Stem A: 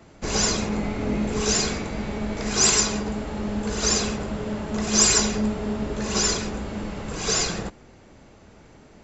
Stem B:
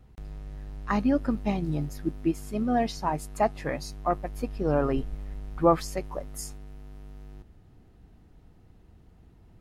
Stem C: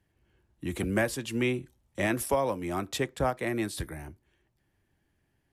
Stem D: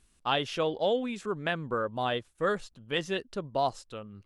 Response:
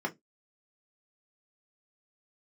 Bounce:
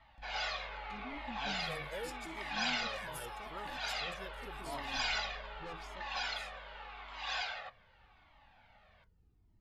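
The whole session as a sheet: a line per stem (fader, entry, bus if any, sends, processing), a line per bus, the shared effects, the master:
−1.0 dB, 0.00 s, send −13.5 dB, Chebyshev band-pass filter 720–3,500 Hz, order 3
−13.0 dB, 0.00 s, send −15.5 dB, high-shelf EQ 10,000 Hz −11.5 dB; soft clipping −26.5 dBFS, distortion −7 dB
−10.5 dB, 0.95 s, send −0.5 dB, Bessel high-pass filter 2,800 Hz; high-shelf EQ 8,700 Hz +10 dB
−13.0 dB, 1.10 s, no send, no processing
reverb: on, RT60 0.15 s, pre-delay 3 ms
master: parametric band 4,700 Hz +2.5 dB 0.4 octaves; flanger whose copies keep moving one way falling 0.84 Hz

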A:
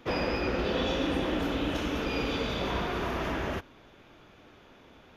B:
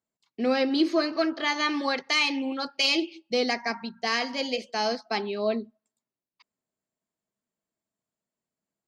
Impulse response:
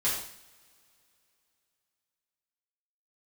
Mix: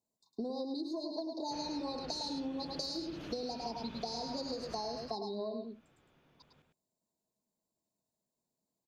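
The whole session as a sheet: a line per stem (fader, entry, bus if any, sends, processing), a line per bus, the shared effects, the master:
−5.0 dB, 1.45 s, no send, echo send −14.5 dB, parametric band 150 Hz +11.5 dB 0.42 octaves; automatic ducking −12 dB, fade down 1.90 s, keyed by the second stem
+0.5 dB, 0.00 s, no send, echo send −6 dB, brick-wall band-stop 1,100–3,600 Hz; downward compressor, threshold −27 dBFS, peak gain reduction 9.5 dB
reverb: not used
echo: single-tap delay 105 ms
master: downward compressor 6 to 1, threshold −36 dBFS, peak gain reduction 12 dB

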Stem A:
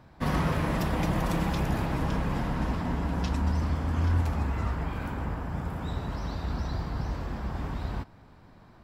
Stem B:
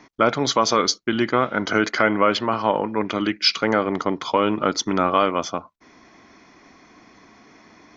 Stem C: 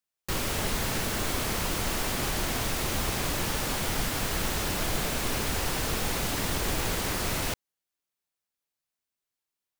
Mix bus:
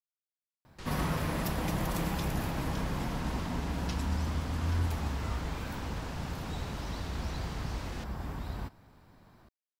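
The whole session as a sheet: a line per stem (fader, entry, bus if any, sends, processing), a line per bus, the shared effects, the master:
−5.0 dB, 0.65 s, no send, high-shelf EQ 10,000 Hz +10 dB
muted
−15.0 dB, 0.50 s, no send, low-pass filter 5,100 Hz 12 dB per octave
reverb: not used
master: high-shelf EQ 5,200 Hz +4 dB

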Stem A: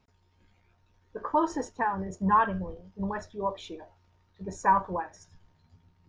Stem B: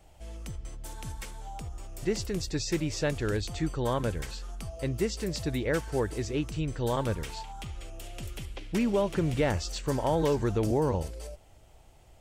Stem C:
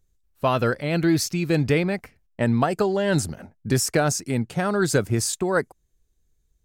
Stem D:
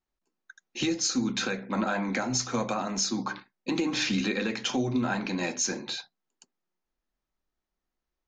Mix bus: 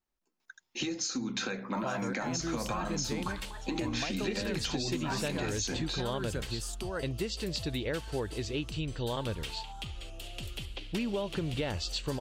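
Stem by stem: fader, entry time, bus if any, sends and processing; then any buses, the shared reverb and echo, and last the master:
−4.5 dB, 0.40 s, no send, spectral tilt +4.5 dB per octave; automatic ducking −10 dB, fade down 0.25 s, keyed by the fourth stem
−2.5 dB, 2.20 s, no send, flat-topped bell 3,500 Hz +8.5 dB 1 octave
−15.0 dB, 1.40 s, no send, no processing
−1.0 dB, 0.00 s, no send, downward compressor, threshold −28 dBFS, peak gain reduction 6 dB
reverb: not used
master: downward compressor, threshold −29 dBFS, peak gain reduction 6.5 dB

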